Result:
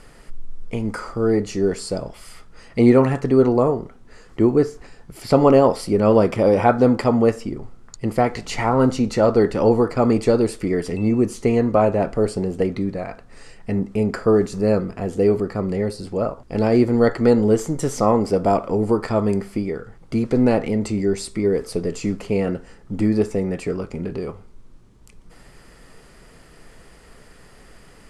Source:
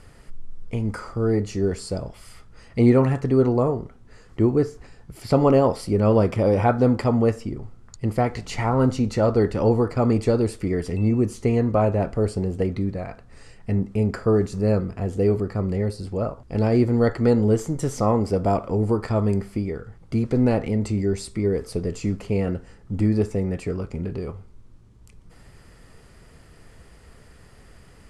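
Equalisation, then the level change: bell 82 Hz -11.5 dB 1.3 oct; +4.5 dB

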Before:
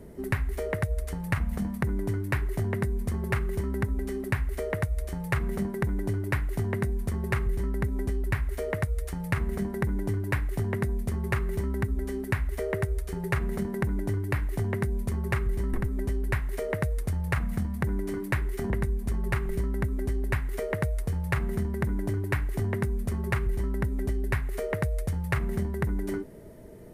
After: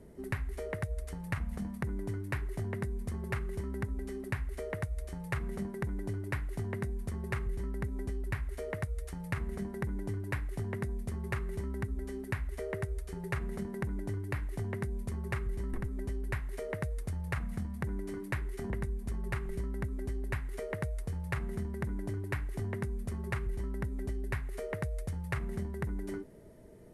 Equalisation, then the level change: elliptic low-pass 12000 Hz, stop band 40 dB; -6.5 dB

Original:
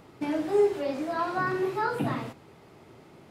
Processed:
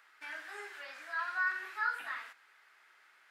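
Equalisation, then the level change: resonant high-pass 1600 Hz, resonance Q 4.1; -8.0 dB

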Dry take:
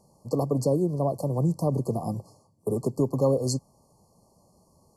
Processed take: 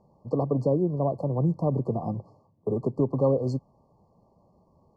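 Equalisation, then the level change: LPF 1900 Hz 12 dB/oct; 0.0 dB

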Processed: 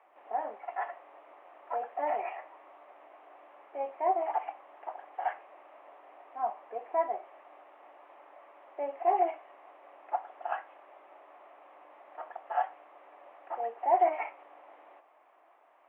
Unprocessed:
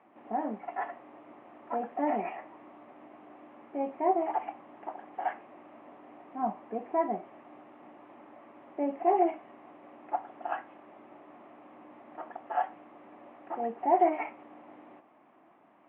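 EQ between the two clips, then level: HPF 490 Hz 24 dB/oct; 0.0 dB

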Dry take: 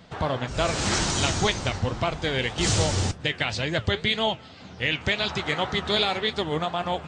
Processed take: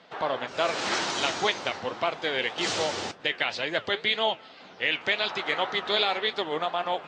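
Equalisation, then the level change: BPF 390–4400 Hz; 0.0 dB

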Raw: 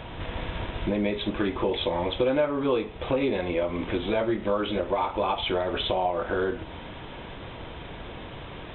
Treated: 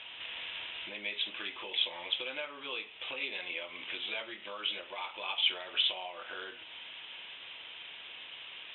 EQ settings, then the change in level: band-pass 2900 Hz, Q 3.5; +5.0 dB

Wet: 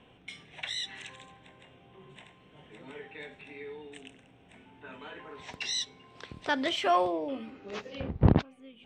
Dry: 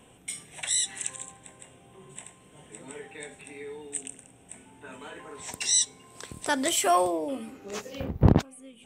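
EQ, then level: air absorption 270 m; bell 4100 Hz +7.5 dB 2.3 oct; -2.5 dB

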